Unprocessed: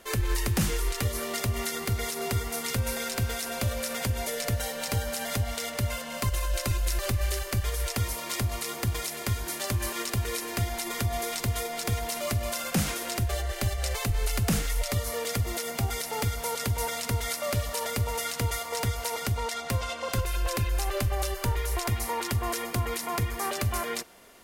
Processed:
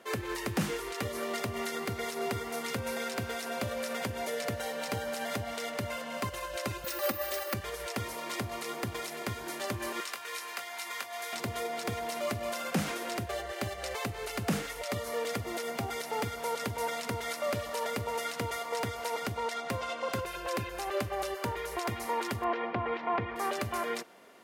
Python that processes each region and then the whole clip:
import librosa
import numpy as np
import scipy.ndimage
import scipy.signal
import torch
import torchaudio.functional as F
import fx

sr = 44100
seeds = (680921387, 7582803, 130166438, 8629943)

y = fx.chain(x, sr, fx.highpass(hz=230.0, slope=6),
    fx.comb(ms=3.6, depth=0.84),
    fx.resample_bad(factor=3, down='filtered', up='zero_stuff'), at=(6.84, 7.54))
y = fx.chain(y, sr, fx.highpass(hz=970.0, slope=12),
    fx.doubler(ms=21.0, db=-7.5), at=(10.0, 11.33))
y = fx.chain(y, sr, fx.lowpass(hz=3100.0, slope=24),
    fx.peak_eq(hz=800.0, db=4.5, octaves=0.85), at=(22.44, 23.36))
y = scipy.signal.sosfilt(scipy.signal.butter(2, 200.0, 'highpass', fs=sr, output='sos'), y)
y = fx.high_shelf(y, sr, hz=3900.0, db=-11.5)